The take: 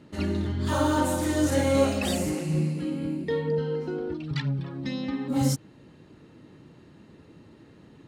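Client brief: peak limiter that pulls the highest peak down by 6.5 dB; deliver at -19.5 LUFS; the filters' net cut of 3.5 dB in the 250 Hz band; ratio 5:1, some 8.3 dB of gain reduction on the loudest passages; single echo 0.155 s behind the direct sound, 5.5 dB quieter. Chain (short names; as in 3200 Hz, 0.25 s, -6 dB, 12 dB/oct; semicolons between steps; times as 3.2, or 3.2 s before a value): bell 250 Hz -4.5 dB; compressor 5:1, threshold -28 dBFS; limiter -25.5 dBFS; echo 0.155 s -5.5 dB; gain +13.5 dB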